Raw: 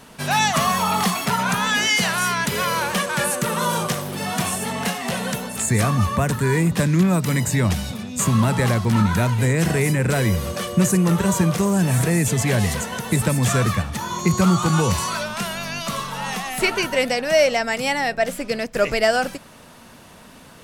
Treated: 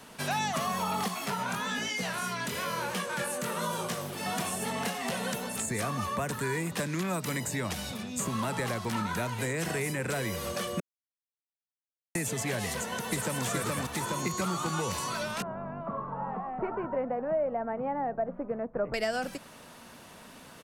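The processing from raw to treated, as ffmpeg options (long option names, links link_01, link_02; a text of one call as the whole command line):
ffmpeg -i in.wav -filter_complex "[0:a]asettb=1/sr,asplit=3[link_01][link_02][link_03];[link_01]atrim=end=1.084[link_04];[link_02]atrim=start=1.08:end=4.26,asetpts=PTS-STARTPTS,afade=type=in:duration=0.004:curve=qsin,afade=type=out:start_time=3.176:duration=0.004:curve=qsin,flanger=delay=16:depth=7.9:speed=1.1[link_05];[link_03]atrim=start=4.256[link_06];[link_04][link_05]acrossfade=duration=0.004:curve1=hsin:curve2=qsin[link_07];[link_07][link_06]acrossfade=duration=0.004:curve1=qsin:curve2=hsin,asplit=2[link_08][link_09];[link_09]afade=type=in:start_time=12.7:duration=0.01,afade=type=out:start_time=13.44:duration=0.01,aecho=0:1:420|840|1260|1680|2100|2520|2940|3360:0.944061|0.519233|0.285578|0.157068|0.0863875|0.0475131|0.0261322|0.0143727[link_10];[link_08][link_10]amix=inputs=2:normalize=0,asettb=1/sr,asplit=3[link_11][link_12][link_13];[link_11]atrim=end=15.424[link_14];[link_12]atrim=start=15.42:end=18.94,asetpts=PTS-STARTPTS,afade=type=in:duration=0.004:curve=qsin,afade=type=out:start_time=3.516:duration=0.004:curve=qsin,lowpass=frequency=1100:width=0.5412,lowpass=frequency=1100:width=1.3066[link_15];[link_13]atrim=start=18.936[link_16];[link_14][link_15]acrossfade=duration=0.004:curve1=hsin:curve2=qsin[link_17];[link_17][link_16]acrossfade=duration=0.004:curve1=qsin:curve2=hsin,asplit=3[link_18][link_19][link_20];[link_18]atrim=end=10.8,asetpts=PTS-STARTPTS,afade=type=out:start_time=10.796:duration=0.004:curve=hsin[link_21];[link_19]atrim=start=10.8:end=12.15,asetpts=PTS-STARTPTS,volume=0[link_22];[link_20]atrim=start=12.15,asetpts=PTS-STARTPTS,afade=type=in:duration=0.004:curve=hsin[link_23];[link_21][link_22][link_23]concat=n=3:v=0:a=1,lowshelf=frequency=140:gain=-7,acrossover=split=270|660[link_24][link_25][link_26];[link_24]acompressor=threshold=-34dB:ratio=4[link_27];[link_25]acompressor=threshold=-32dB:ratio=4[link_28];[link_26]acompressor=threshold=-29dB:ratio=4[link_29];[link_27][link_28][link_29]amix=inputs=3:normalize=0,volume=-4dB" out.wav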